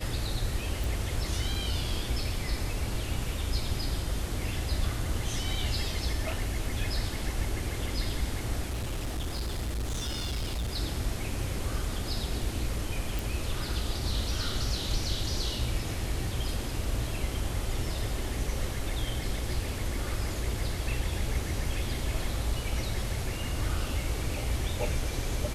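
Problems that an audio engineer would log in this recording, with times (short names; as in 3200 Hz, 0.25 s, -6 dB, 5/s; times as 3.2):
0.84 pop
8.68–10.77 clipped -28.5 dBFS
13.19 pop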